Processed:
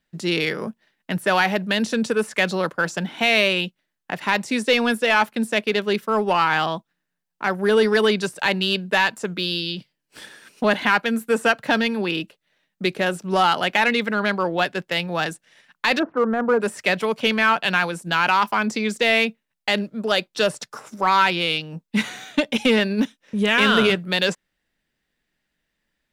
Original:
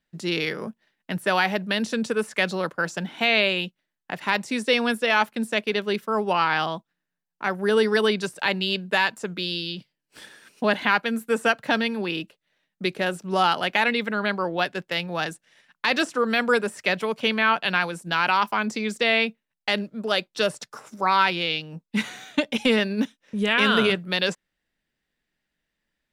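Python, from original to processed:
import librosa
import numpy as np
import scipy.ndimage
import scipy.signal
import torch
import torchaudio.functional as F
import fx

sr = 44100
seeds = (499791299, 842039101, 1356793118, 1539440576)

p1 = fx.lowpass(x, sr, hz=1300.0, slope=24, at=(15.98, 16.6), fade=0.02)
p2 = np.clip(p1, -10.0 ** (-19.0 / 20.0), 10.0 ** (-19.0 / 20.0))
y = p1 + (p2 * librosa.db_to_amplitude(-5.0))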